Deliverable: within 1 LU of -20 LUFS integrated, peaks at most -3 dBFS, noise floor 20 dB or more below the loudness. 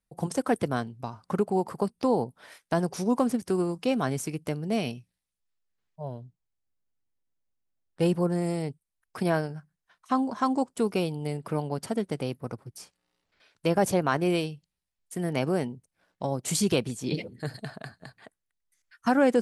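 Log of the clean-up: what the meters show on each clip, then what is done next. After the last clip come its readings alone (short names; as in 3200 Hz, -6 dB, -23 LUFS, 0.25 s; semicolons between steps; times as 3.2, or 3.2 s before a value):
loudness -29.0 LUFS; peak -11.0 dBFS; loudness target -20.0 LUFS
-> gain +9 dB; limiter -3 dBFS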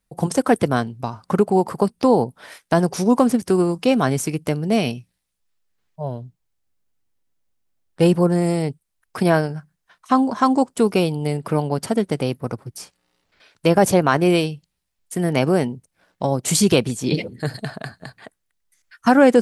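loudness -20.0 LUFS; peak -3.0 dBFS; noise floor -76 dBFS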